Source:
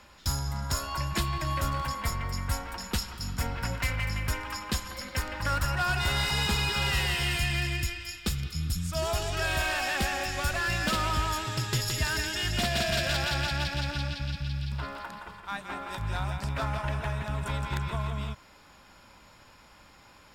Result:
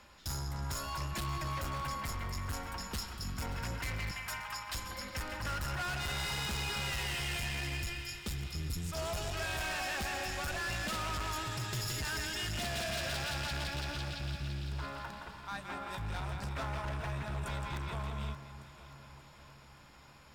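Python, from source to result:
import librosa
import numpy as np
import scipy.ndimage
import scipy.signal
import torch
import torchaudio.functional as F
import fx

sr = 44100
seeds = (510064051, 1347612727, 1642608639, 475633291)

p1 = fx.steep_highpass(x, sr, hz=600.0, slope=96, at=(4.11, 4.75))
p2 = np.clip(10.0 ** (30.5 / 20.0) * p1, -1.0, 1.0) / 10.0 ** (30.5 / 20.0)
p3 = p2 + fx.echo_alternate(p2, sr, ms=289, hz=1600.0, feedback_pct=76, wet_db=-12.5, dry=0)
y = p3 * 10.0 ** (-4.0 / 20.0)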